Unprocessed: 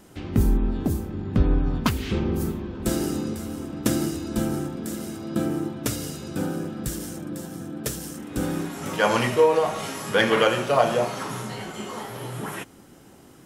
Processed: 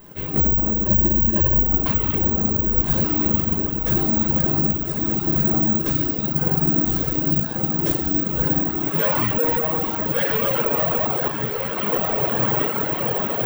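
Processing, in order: reverberation RT60 2.3 s, pre-delay 5 ms, DRR -5 dB; flange 0.54 Hz, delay 0.8 ms, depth 4.7 ms, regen -71%; overload inside the chain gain 21.5 dB; treble shelf 4.8 kHz -10 dB; echo that smears into a reverb 1243 ms, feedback 58%, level -3 dB; reverb removal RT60 1.1 s; 0.86–1.60 s: rippled EQ curve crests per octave 1.3, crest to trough 16 dB; gain riding within 4 dB 2 s; careless resampling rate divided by 2×, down none, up zero stuff; 11.28–11.78 s: three-phase chorus; trim +2 dB

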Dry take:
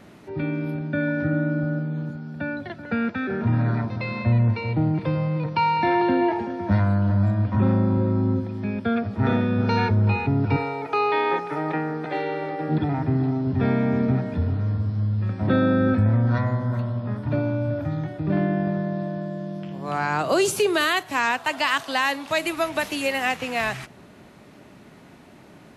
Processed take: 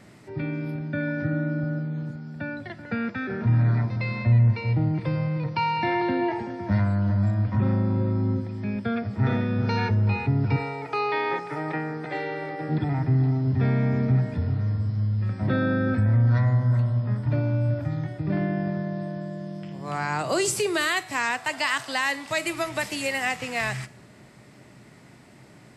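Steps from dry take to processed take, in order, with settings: graphic EQ with 31 bands 125 Hz +11 dB, 2 kHz +6 dB, 5 kHz +7 dB, 8 kHz +11 dB; in parallel at -3 dB: peak limiter -12 dBFS, peak gain reduction 7 dB; on the sum: feedback comb 68 Hz, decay 0.66 s, harmonics odd, mix 50%; trim -3.5 dB

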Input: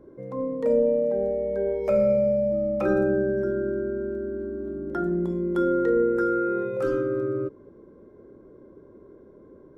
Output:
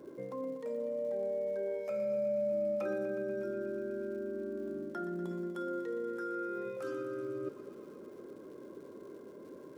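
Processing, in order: high-pass 170 Hz 12 dB/octave; treble shelf 2.1 kHz +10 dB; reverse; compression 6:1, threshold -36 dBFS, peak gain reduction 17.5 dB; reverse; crackle 250 per s -56 dBFS; thinning echo 121 ms, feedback 83%, high-pass 260 Hz, level -11.5 dB

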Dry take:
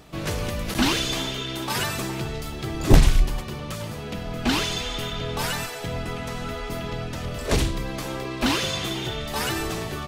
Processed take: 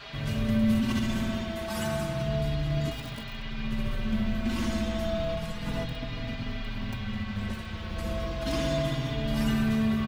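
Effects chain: 5.35–7.50 s: bass shelf 420 Hz +11.5 dB; bucket-brigade echo 68 ms, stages 1024, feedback 84%, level -4 dB; integer overflow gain 8.5 dB; short-mantissa float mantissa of 4-bit; tone controls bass +12 dB, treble 0 dB; compressor with a negative ratio -15 dBFS, ratio -1; band noise 340–3700 Hz -29 dBFS; feedback comb 220 Hz, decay 0.19 s, harmonics odd, mix 80%; endless flanger 4.5 ms -0.32 Hz; trim -1.5 dB

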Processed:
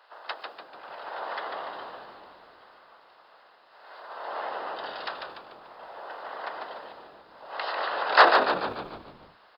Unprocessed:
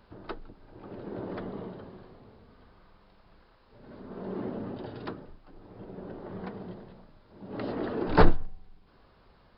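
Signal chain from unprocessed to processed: spectral peaks clipped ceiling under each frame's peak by 18 dB; high-pass 600 Hz 24 dB/octave; band-stop 2.3 kHz, Q 10; frequency-shifting echo 146 ms, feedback 53%, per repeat -79 Hz, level -5 dB; tape noise reduction on one side only decoder only; trim +4.5 dB

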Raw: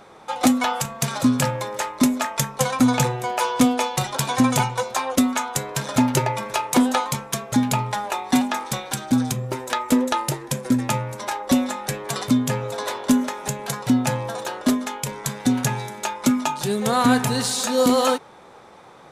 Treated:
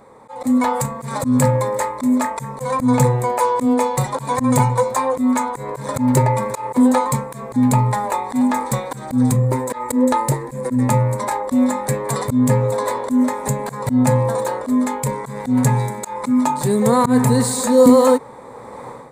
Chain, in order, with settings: level rider gain up to 14.5 dB; rippled EQ curve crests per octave 0.99, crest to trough 9 dB; in parallel at -1 dB: peak limiter -12 dBFS, peak gain reduction 15 dB; on the sum: slow attack 131 ms; peaking EQ 3.5 kHz -14.5 dB 1.7 oct; trim -4 dB

